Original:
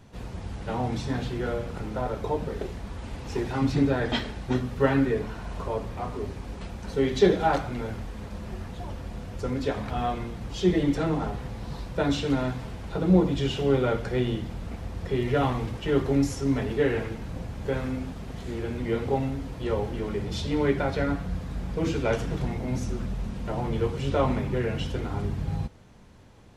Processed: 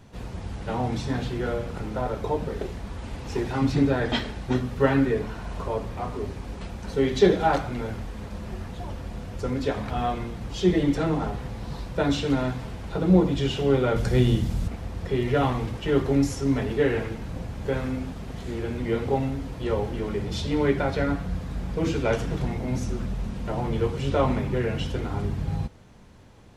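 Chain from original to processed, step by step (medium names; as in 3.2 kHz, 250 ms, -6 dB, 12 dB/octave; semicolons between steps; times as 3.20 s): 13.96–14.68 s: tone controls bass +8 dB, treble +10 dB; trim +1.5 dB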